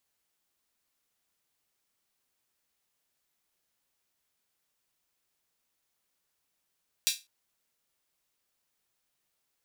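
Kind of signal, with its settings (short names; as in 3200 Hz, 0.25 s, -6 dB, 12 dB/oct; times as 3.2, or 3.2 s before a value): open hi-hat length 0.20 s, high-pass 3400 Hz, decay 0.24 s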